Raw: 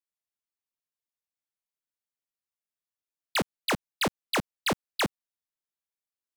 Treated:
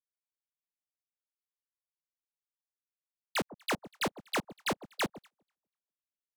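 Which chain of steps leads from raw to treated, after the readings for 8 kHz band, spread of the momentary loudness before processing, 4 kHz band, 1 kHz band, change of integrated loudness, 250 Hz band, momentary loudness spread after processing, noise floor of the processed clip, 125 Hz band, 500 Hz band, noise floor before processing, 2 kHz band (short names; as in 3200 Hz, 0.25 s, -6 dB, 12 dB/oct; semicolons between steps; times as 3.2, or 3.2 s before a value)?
-5.0 dB, 2 LU, -6.5 dB, -4.5 dB, -5.0 dB, -5.0 dB, 2 LU, under -85 dBFS, -7.0 dB, -4.0 dB, under -85 dBFS, -4.5 dB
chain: echo with dull and thin repeats by turns 0.122 s, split 930 Hz, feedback 52%, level -5.5 dB; upward expander 2.5:1, over -46 dBFS; gain -4 dB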